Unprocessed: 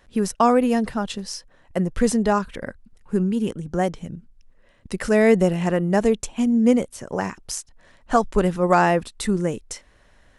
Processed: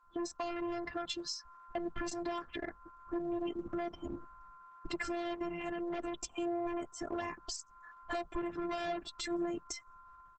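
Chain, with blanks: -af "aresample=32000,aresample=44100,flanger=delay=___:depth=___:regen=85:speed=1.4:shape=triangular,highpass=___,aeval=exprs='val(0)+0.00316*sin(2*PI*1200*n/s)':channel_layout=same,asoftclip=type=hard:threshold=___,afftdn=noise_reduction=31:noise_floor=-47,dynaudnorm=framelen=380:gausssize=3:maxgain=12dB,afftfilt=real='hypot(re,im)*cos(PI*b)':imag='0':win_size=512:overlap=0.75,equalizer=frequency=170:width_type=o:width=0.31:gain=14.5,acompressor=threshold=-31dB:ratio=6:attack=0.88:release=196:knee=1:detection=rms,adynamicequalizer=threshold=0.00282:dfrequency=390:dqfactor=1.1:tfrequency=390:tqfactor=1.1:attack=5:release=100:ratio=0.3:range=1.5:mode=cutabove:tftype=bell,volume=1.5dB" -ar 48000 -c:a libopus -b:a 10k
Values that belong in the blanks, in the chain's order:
0.5, 1, 44, -26dB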